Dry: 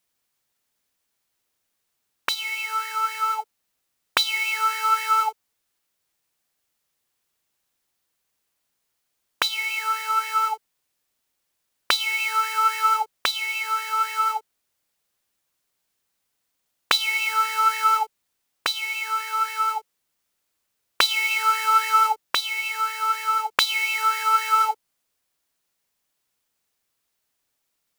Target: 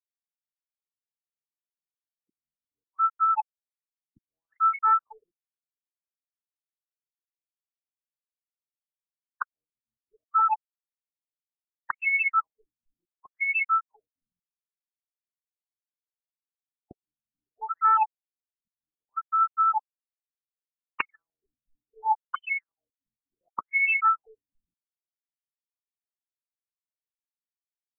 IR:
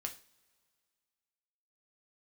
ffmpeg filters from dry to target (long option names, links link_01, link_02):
-filter_complex "[0:a]acrusher=bits=3:mode=log:mix=0:aa=0.000001,asplit=2[link_01][link_02];[1:a]atrim=start_sample=2205,asetrate=66150,aresample=44100,lowpass=7900[link_03];[link_02][link_03]afir=irnorm=-1:irlink=0,volume=0.5dB[link_04];[link_01][link_04]amix=inputs=2:normalize=0,afftfilt=real='re*gte(hypot(re,im),0.501)':imag='im*gte(hypot(re,im),0.501)':win_size=1024:overlap=0.75,asoftclip=type=tanh:threshold=-15.5dB,afftfilt=real='re*lt(b*sr/1024,240*pow(3100/240,0.5+0.5*sin(2*PI*0.68*pts/sr)))':imag='im*lt(b*sr/1024,240*pow(3100/240,0.5+0.5*sin(2*PI*0.68*pts/sr)))':win_size=1024:overlap=0.75"